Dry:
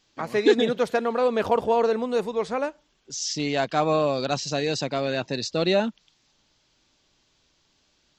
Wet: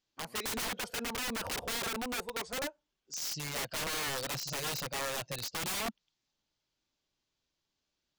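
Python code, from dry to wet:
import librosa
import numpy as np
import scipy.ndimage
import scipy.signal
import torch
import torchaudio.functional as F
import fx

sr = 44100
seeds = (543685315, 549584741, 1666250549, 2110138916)

y = fx.noise_reduce_blind(x, sr, reduce_db=12)
y = (np.mod(10.0 ** (24.0 / 20.0) * y + 1.0, 2.0) - 1.0) / 10.0 ** (24.0 / 20.0)
y = y * 10.0 ** (-6.5 / 20.0)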